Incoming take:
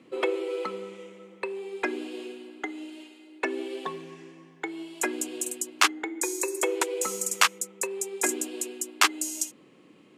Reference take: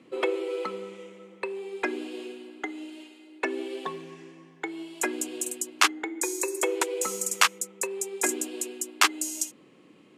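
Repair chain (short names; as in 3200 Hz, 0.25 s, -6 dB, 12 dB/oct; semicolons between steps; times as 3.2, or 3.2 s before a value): clip repair -5.5 dBFS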